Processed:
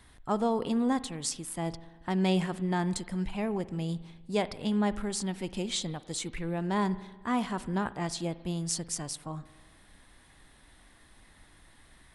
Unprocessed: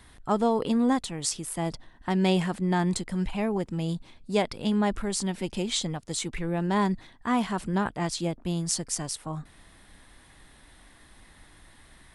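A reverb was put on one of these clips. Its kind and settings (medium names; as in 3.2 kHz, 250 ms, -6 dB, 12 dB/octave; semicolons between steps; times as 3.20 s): spring tank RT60 1.3 s, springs 48 ms, chirp 40 ms, DRR 16 dB; trim -4 dB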